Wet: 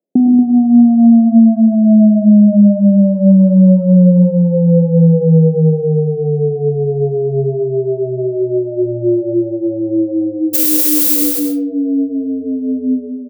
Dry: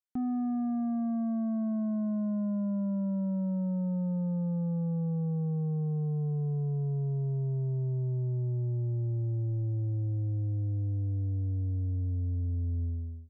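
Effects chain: elliptic band-pass 190–600 Hz, stop band 40 dB; compressor, threshold -35 dBFS, peak gain reduction 6.5 dB; 10.53–11.15 added noise violet -38 dBFS; doubler 43 ms -13 dB; echo 0.234 s -8 dB; digital reverb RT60 0.61 s, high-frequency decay 0.6×, pre-delay 65 ms, DRR 3.5 dB; maximiser +28.5 dB; gain -1 dB

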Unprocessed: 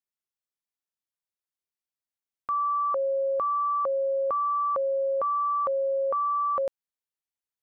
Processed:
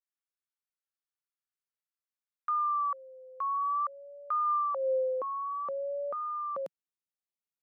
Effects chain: vibrato 0.53 Hz 89 cents; high-pass sweep 1300 Hz -> 170 Hz, 4.45–5.48; gain -9 dB

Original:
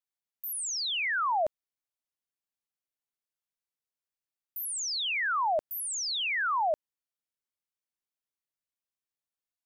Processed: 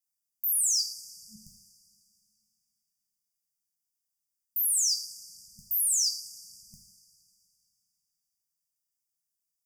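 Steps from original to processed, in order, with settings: 0.85–1.36 octaver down 2 oct, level +2 dB; high shelf 3000 Hz +8 dB; two-slope reverb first 0.52 s, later 2.8 s, from -19 dB, DRR 2.5 dB; soft clip -15.5 dBFS, distortion -26 dB; FFT band-reject 220–4600 Hz

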